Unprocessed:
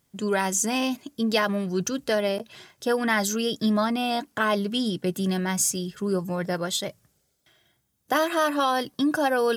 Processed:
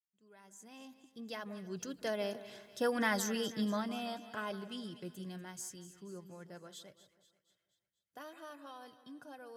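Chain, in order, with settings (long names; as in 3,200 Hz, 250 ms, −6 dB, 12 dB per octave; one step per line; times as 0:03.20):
fade in at the beginning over 2.15 s
source passing by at 0:02.89, 8 m/s, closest 5.1 metres
echo with a time of its own for lows and highs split 1,800 Hz, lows 163 ms, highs 241 ms, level −14 dB
level −8.5 dB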